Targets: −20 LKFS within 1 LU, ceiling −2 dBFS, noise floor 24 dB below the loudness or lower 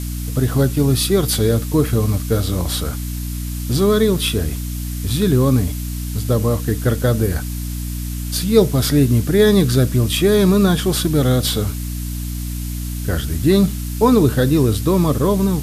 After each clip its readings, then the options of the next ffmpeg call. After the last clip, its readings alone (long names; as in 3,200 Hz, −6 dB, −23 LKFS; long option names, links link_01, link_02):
mains hum 60 Hz; hum harmonics up to 300 Hz; level of the hum −22 dBFS; background noise floor −25 dBFS; target noise floor −42 dBFS; integrated loudness −17.5 LKFS; sample peak −1.5 dBFS; target loudness −20.0 LKFS
→ -af "bandreject=frequency=60:width_type=h:width=4,bandreject=frequency=120:width_type=h:width=4,bandreject=frequency=180:width_type=h:width=4,bandreject=frequency=240:width_type=h:width=4,bandreject=frequency=300:width_type=h:width=4"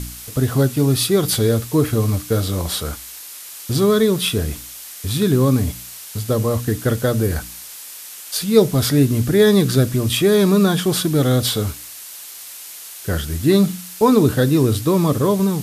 mains hum none found; background noise floor −36 dBFS; target noise floor −42 dBFS
→ -af "afftdn=noise_reduction=6:noise_floor=-36"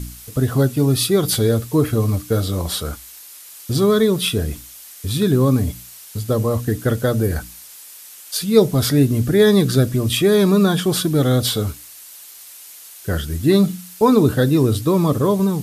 background noise floor −40 dBFS; target noise floor −42 dBFS
→ -af "afftdn=noise_reduction=6:noise_floor=-40"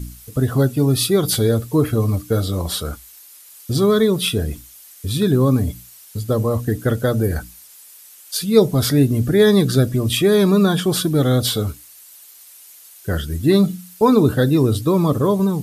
background noise floor −44 dBFS; integrated loudness −18.0 LKFS; sample peak −1.5 dBFS; target loudness −20.0 LKFS
→ -af "volume=-2dB"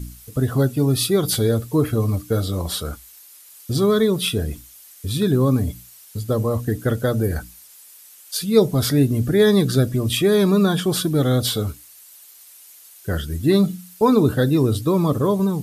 integrated loudness −20.0 LKFS; sample peak −3.5 dBFS; background noise floor −46 dBFS